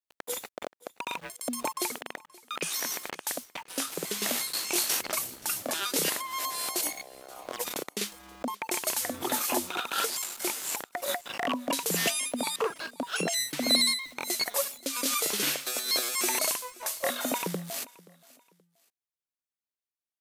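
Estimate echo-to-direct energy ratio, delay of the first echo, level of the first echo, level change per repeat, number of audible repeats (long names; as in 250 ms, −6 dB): −22.0 dB, 527 ms, −22.5 dB, −10.0 dB, 2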